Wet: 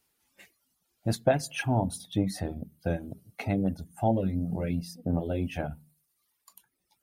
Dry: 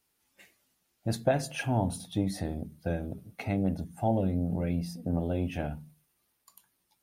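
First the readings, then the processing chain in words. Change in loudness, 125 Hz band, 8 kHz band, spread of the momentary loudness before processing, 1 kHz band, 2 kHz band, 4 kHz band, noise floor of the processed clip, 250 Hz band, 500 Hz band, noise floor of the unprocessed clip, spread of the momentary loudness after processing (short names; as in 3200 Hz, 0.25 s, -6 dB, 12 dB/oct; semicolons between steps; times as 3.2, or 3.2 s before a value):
+1.0 dB, +0.5 dB, +2.0 dB, 8 LU, +2.0 dB, +2.0 dB, +2.0 dB, -78 dBFS, +1.0 dB, +1.5 dB, -76 dBFS, 10 LU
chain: reverb removal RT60 0.9 s; gain +2.5 dB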